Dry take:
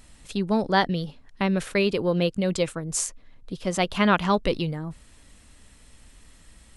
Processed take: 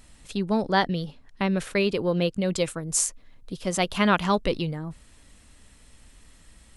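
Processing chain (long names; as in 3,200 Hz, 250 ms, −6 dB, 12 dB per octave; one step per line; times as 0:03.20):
0:02.56–0:04.44: high-shelf EQ 6,800 Hz +7.5 dB
level −1 dB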